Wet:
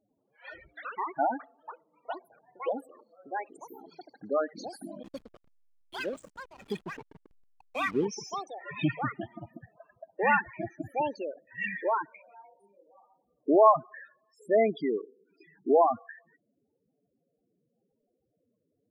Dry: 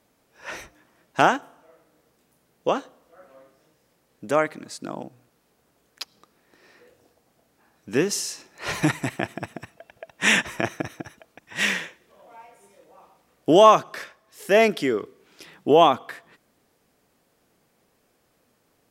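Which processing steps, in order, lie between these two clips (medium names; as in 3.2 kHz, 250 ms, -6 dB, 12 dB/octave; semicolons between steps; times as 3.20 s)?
loudest bins only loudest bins 8; ever faster or slower copies 91 ms, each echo +5 st, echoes 3, each echo -6 dB; 5.03–8.05 s: hysteresis with a dead band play -33.5 dBFS; trim -5.5 dB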